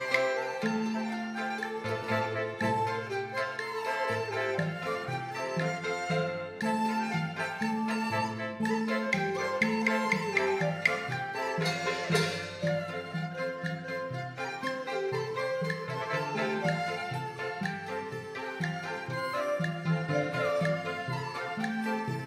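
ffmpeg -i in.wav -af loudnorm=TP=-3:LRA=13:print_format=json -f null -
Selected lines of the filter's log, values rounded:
"input_i" : "-31.7",
"input_tp" : "-10.0",
"input_lra" : "4.3",
"input_thresh" : "-41.7",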